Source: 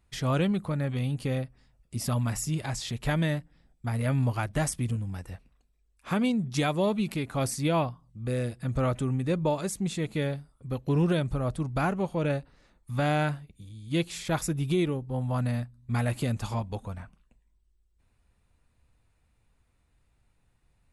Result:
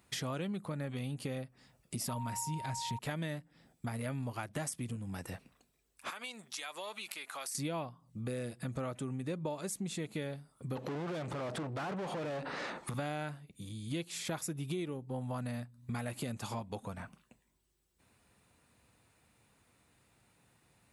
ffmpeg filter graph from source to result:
-filter_complex "[0:a]asettb=1/sr,asplit=3[a][b][c];[a]atrim=end=2.094[d];[b]atrim=start=2.09:end=2.99,asetpts=PTS-STARTPTS,afade=t=in:d=0.004:c=qsin,afade=t=out:st=0.896:d=0.004:c=qsin,asubboost=boost=9:cutoff=200,aeval=exprs='val(0)+0.0251*sin(2*PI*930*n/s)':c=same[e];[c]atrim=start=2.986[f];[d][e]acrossfade=d=0.004:c1=hsin:c2=qsin[g];[g][f]acrossfade=d=0.004:c1=qsin:c2=hsin,asettb=1/sr,asplit=3[h][i][j];[h]atrim=end=6.104[k];[i]atrim=start=6.1:end=7.55,asetpts=PTS-STARTPTS,afade=t=in:d=0.004:c=qsin,afade=t=out:st=1.446:d=0.004:c=qsin,highpass=1.1k,acompressor=threshold=-49dB:ratio=2.5:attack=3.2:release=140:knee=1:detection=peak[l];[j]atrim=start=7.546[m];[k][l]acrossfade=d=0.004:c1=hsin:c2=qsin[n];[n][m]acrossfade=d=0.004:c1=qsin:c2=hsin,asettb=1/sr,asplit=3[o][p][q];[o]atrim=end=10.764[r];[p]atrim=start=10.76:end=12.94,asetpts=PTS-STARTPTS,afade=t=in:d=0.004:c=qsin,afade=t=out:st=2.176:d=0.004:c=qsin,asplit=2[s][t];[t]highpass=f=720:p=1,volume=38dB,asoftclip=type=tanh:threshold=-16dB[u];[s][u]amix=inputs=2:normalize=0,lowpass=f=1.4k:p=1,volume=-6dB,lowpass=9.6k,acompressor=threshold=-33dB:ratio=3:attack=3.2:release=140:knee=1:detection=peak[v];[q]atrim=start=12.936[w];[r][v]acrossfade=d=0.004:c1=hsin:c2=qsin[x];[x][w]acrossfade=d=0.004:c1=qsin:c2=hsin,highpass=150,highshelf=f=7.6k:g=5,acompressor=threshold=-45dB:ratio=4,volume=6.5dB"

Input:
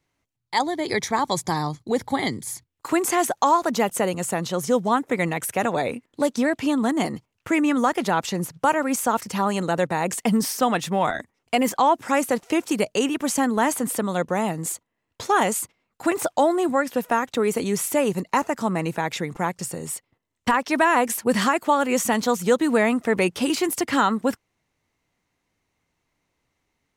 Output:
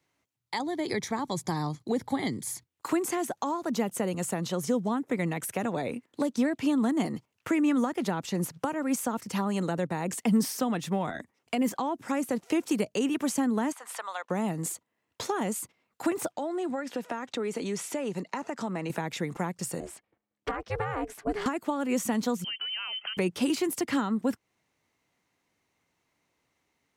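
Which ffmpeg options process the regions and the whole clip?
-filter_complex "[0:a]asettb=1/sr,asplit=3[a][b][c];[a]atrim=end=13.724[d];[b]atrim=start=13.72:end=14.3,asetpts=PTS-STARTPTS,afade=t=in:d=0.004:c=qsin,afade=t=out:st=0.576:d=0.004:c=qsin,highpass=f=820:w=0.5412,highpass=f=820:w=1.3066,aemphasis=mode=reproduction:type=bsi[e];[c]atrim=start=14.296[f];[d][e]acrossfade=d=0.004:c1=hsin:c2=qsin[g];[g][f]acrossfade=d=0.004:c1=qsin:c2=hsin,asettb=1/sr,asplit=3[h][i][j];[h]atrim=end=16.324[k];[i]atrim=start=16.32:end=18.9,asetpts=PTS-STARTPTS,afade=t=in:d=0.004:c=qsin,afade=t=out:st=2.576:d=0.004:c=qsin,bandreject=f=1.1k:w=17,acompressor=threshold=-30dB:ratio=2:attack=3.2:release=140:knee=1:detection=peak,highpass=120,lowpass=7.1k[l];[j]atrim=start=18.896[m];[k][l]acrossfade=d=0.004:c1=hsin:c2=qsin[n];[n][m]acrossfade=d=0.004:c1=qsin:c2=hsin,asettb=1/sr,asplit=3[o][p][q];[o]atrim=end=19.804[r];[p]atrim=start=19.8:end=21.46,asetpts=PTS-STARTPTS,afade=t=in:d=0.004:c=qsin,afade=t=out:st=1.656:d=0.004:c=qsin,lowpass=f=1.8k:p=1,aeval=exprs='val(0)*sin(2*PI*210*n/s)':c=same[s];[q]atrim=start=21.456[t];[r][s]acrossfade=d=0.004:c1=hsin:c2=qsin[u];[u][t]acrossfade=d=0.004:c1=qsin:c2=hsin,asettb=1/sr,asplit=3[v][w][x];[v]atrim=end=22.444[y];[w]atrim=start=22.44:end=23.17,asetpts=PTS-STARTPTS,afade=t=in:d=0.004:c=qsin,afade=t=out:st=0.726:d=0.004:c=qsin,acompressor=threshold=-29dB:ratio=4:attack=3.2:release=140:knee=1:detection=peak,lowpass=f=2.8k:t=q:w=0.5098,lowpass=f=2.8k:t=q:w=0.6013,lowpass=f=2.8k:t=q:w=0.9,lowpass=f=2.8k:t=q:w=2.563,afreqshift=-3300[z];[x]atrim=start=23.166[aa];[y][z]acrossfade=d=0.004:c1=hsin:c2=qsin[ab];[ab][aa]acrossfade=d=0.004:c1=qsin:c2=hsin,highpass=f=160:p=1,acrossover=split=320[ac][ad];[ad]acompressor=threshold=-32dB:ratio=5[ae];[ac][ae]amix=inputs=2:normalize=0"

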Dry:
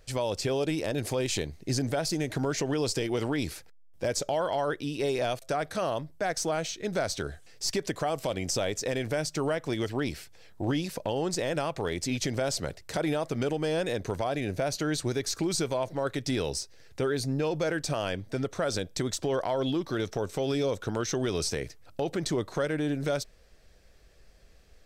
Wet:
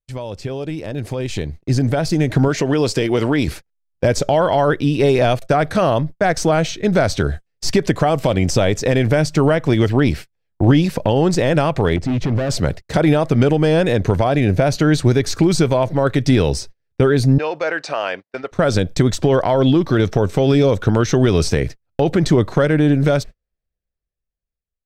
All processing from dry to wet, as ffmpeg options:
-filter_complex "[0:a]asettb=1/sr,asplit=3[a][b][c];[a]atrim=end=2.484[d];[b]atrim=start=2.48:end=3.48,asetpts=PTS-STARTPTS,afade=t=in:d=0.004:c=qsin,afade=t=out:st=0.996:d=0.004:c=qsin,lowshelf=f=150:g=-10.5,bandreject=f=800:w=17[e];[c]atrim=start=3.476[f];[d][e]acrossfade=d=0.004:c1=hsin:c2=qsin[g];[g][f]acrossfade=d=0.004:c1=qsin:c2=hsin,asettb=1/sr,asplit=3[h][i][j];[h]atrim=end=11.964[k];[i]atrim=start=11.96:end=12.5,asetpts=PTS-STARTPTS,afade=t=in:d=0.004:c=qsin,afade=t=out:st=0.536:d=0.004:c=qsin,lowpass=f=1.3k:p=1,asoftclip=type=hard:threshold=-32dB[l];[j]atrim=start=12.496[m];[k][l]acrossfade=d=0.004:c1=hsin:c2=qsin[n];[n][m]acrossfade=d=0.004:c1=qsin:c2=hsin,asettb=1/sr,asplit=3[o][p][q];[o]atrim=end=17.384[r];[p]atrim=start=17.38:end=18.52,asetpts=PTS-STARTPTS,afade=t=in:d=0.004:c=qsin,afade=t=out:st=1.136:d=0.004:c=qsin,highpass=650,lowpass=4.8k,bandreject=f=3.3k:w=8.8[s];[q]atrim=start=18.516[t];[r][s]acrossfade=d=0.004:c1=hsin:c2=qsin[u];[u][t]acrossfade=d=0.004:c1=qsin:c2=hsin,agate=range=-39dB:threshold=-41dB:ratio=16:detection=peak,bass=f=250:g=7,treble=f=4k:g=-8,dynaudnorm=f=400:g=9:m=14.5dB"

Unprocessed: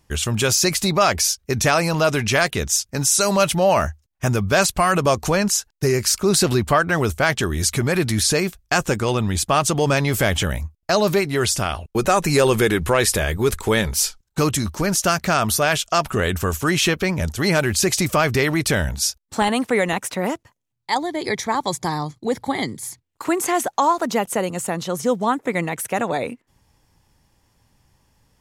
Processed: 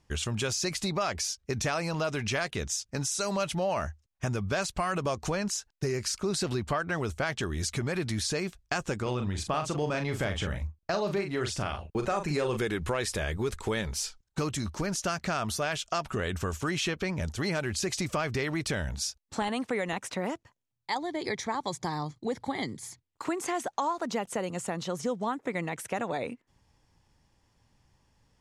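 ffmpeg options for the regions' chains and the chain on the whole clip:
-filter_complex "[0:a]asettb=1/sr,asplit=3[a][b][c];[a]atrim=end=9.024[d];[b]atrim=start=9.02:end=12.57,asetpts=PTS-STARTPTS,afade=t=in:d=0.004:c=qsin,afade=t=out:st=3.546:d=0.004:c=qsin,highshelf=f=4.5k:g=-7.5,asplit=2[e][f];[f]adelay=40,volume=-7dB[g];[e][g]amix=inputs=2:normalize=0,atrim=end_sample=156555[h];[c]atrim=start=12.566[i];[d][h]acrossfade=d=0.004:c1=hsin:c2=qsin[j];[j][i]acrossfade=d=0.004:c1=qsin:c2=hsin,acompressor=threshold=-23dB:ratio=2.5,lowpass=7.7k,volume=-6dB"

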